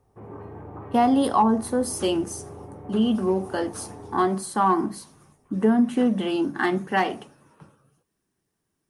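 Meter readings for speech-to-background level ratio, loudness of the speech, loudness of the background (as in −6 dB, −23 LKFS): 18.0 dB, −23.5 LKFS, −41.5 LKFS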